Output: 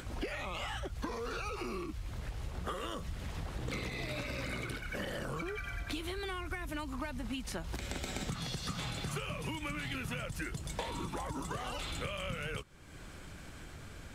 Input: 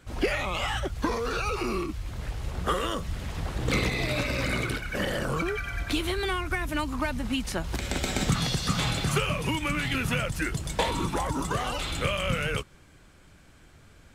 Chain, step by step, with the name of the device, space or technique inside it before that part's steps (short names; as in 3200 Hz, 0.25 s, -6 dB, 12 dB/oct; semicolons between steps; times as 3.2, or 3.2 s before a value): upward and downward compression (upward compressor, threshold -32 dBFS; compressor 4:1, threshold -31 dBFS, peak gain reduction 10 dB); gain -5 dB